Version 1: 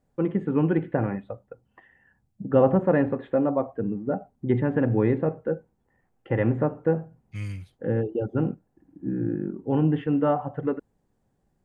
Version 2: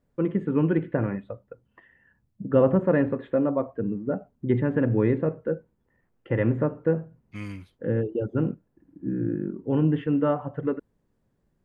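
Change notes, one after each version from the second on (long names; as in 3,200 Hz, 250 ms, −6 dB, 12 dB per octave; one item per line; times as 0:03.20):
first voice: add parametric band 780 Hz −10.5 dB 0.24 octaves
second voice: add graphic EQ with 10 bands 125 Hz −11 dB, 250 Hz +10 dB, 1,000 Hz +9 dB, 8,000 Hz −5 dB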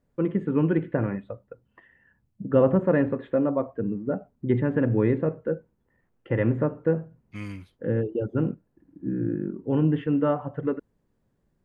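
nothing changed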